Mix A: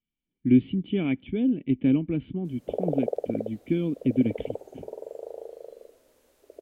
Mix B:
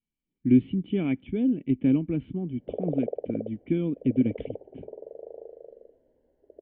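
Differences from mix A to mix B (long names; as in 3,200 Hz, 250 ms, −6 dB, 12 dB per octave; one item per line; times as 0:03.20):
background: add moving average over 36 samples
master: add high-frequency loss of the air 260 metres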